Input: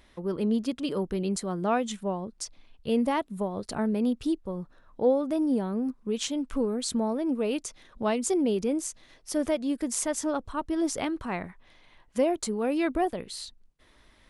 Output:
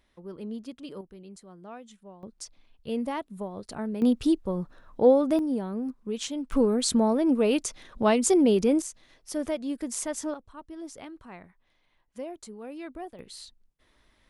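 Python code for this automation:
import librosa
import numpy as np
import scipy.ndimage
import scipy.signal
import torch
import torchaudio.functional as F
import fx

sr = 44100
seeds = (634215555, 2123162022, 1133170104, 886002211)

y = fx.gain(x, sr, db=fx.steps((0.0, -10.5), (1.01, -17.5), (2.23, -5.0), (4.02, 4.5), (5.39, -2.5), (6.52, 5.0), (8.82, -3.0), (10.34, -13.0), (13.19, -5.5)))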